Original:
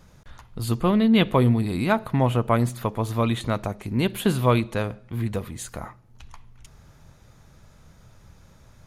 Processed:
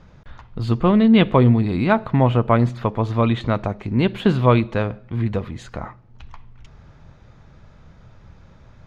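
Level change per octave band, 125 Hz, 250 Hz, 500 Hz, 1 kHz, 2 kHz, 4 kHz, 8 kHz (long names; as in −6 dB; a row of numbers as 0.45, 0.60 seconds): +5.0 dB, +5.0 dB, +4.5 dB, +4.0 dB, +3.0 dB, +0.5 dB, below −10 dB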